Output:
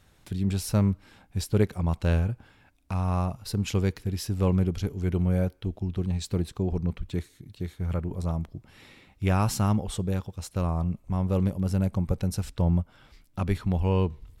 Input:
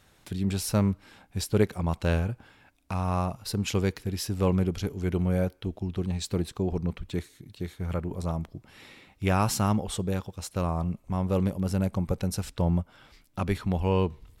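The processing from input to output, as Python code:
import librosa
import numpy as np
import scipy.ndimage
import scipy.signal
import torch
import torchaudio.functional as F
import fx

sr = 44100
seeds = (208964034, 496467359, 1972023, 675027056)

y = fx.low_shelf(x, sr, hz=160.0, db=7.5)
y = y * librosa.db_to_amplitude(-2.5)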